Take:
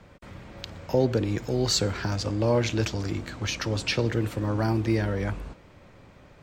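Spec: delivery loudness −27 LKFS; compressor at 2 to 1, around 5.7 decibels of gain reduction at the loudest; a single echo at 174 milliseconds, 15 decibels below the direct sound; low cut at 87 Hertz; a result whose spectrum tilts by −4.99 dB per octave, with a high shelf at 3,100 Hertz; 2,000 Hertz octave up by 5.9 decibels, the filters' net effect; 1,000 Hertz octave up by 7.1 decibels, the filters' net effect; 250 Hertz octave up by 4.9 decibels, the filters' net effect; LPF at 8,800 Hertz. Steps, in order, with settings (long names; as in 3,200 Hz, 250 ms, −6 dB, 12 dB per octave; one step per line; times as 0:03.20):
high-pass filter 87 Hz
low-pass filter 8,800 Hz
parametric band 250 Hz +6 dB
parametric band 1,000 Hz +7.5 dB
parametric band 2,000 Hz +7.5 dB
high-shelf EQ 3,100 Hz −6.5 dB
downward compressor 2 to 1, threshold −24 dBFS
single-tap delay 174 ms −15 dB
level +0.5 dB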